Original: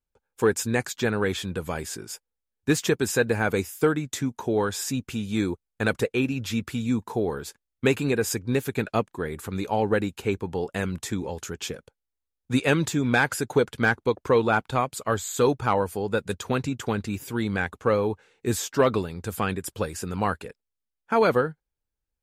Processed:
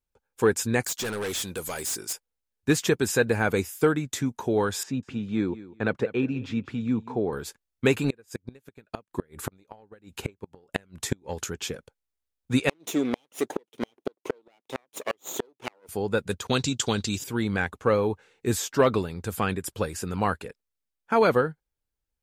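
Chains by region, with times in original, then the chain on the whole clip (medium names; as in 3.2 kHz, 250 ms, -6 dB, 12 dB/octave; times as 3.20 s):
0.83–2.13 s: tone controls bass -8 dB, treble +14 dB + overload inside the chain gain 27.5 dB
4.83–7.33 s: high-pass 110 Hz + tape spacing loss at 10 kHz 25 dB + feedback delay 197 ms, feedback 20%, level -17 dB
8.04–11.48 s: upward compressor, threshold -29 dBFS + transient shaper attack +11 dB, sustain -2 dB + inverted gate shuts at -14 dBFS, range -33 dB
12.69–15.89 s: comb filter that takes the minimum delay 0.32 ms + resonant high-pass 340 Hz, resonance Q 1.5 + inverted gate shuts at -13 dBFS, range -39 dB
16.47–17.24 s: expander -41 dBFS + high-order bell 5 kHz +13 dB
whole clip: none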